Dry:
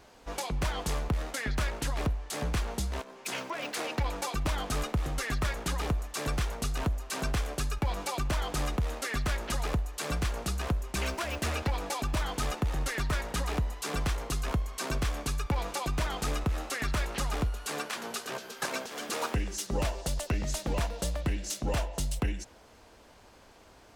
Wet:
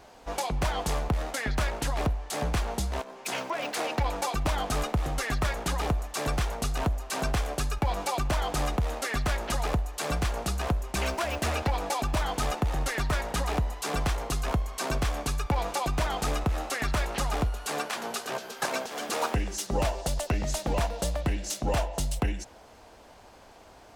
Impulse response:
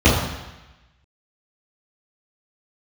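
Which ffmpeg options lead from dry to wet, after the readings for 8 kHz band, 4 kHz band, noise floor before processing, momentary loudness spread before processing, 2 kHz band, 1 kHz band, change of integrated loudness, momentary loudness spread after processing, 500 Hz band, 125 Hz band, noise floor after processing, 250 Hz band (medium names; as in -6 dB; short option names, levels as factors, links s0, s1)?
+2.0 dB, +2.0 dB, -56 dBFS, 3 LU, +2.5 dB, +5.5 dB, +3.0 dB, 3 LU, +4.5 dB, +2.0 dB, -52 dBFS, +2.5 dB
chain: -af "equalizer=f=740:t=o:w=0.78:g=5.5,volume=1.26"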